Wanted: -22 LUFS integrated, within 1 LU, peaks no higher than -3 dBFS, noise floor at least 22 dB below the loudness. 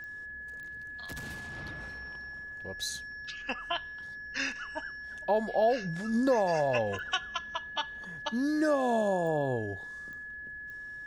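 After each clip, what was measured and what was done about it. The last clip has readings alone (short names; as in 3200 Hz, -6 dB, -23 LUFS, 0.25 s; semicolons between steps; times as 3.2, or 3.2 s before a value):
clicks 6; steady tone 1700 Hz; tone level -40 dBFS; loudness -32.5 LUFS; peak -16.0 dBFS; loudness target -22.0 LUFS
-> de-click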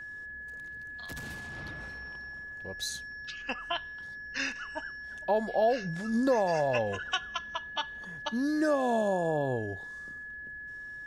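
clicks 0; steady tone 1700 Hz; tone level -40 dBFS
-> notch 1700 Hz, Q 30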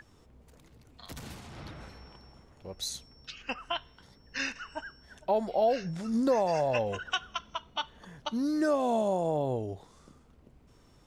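steady tone none; loudness -31.5 LUFS; peak -16.5 dBFS; loudness target -22.0 LUFS
-> gain +9.5 dB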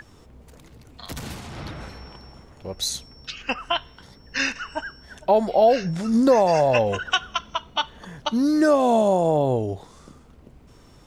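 loudness -22.0 LUFS; peak -7.0 dBFS; noise floor -51 dBFS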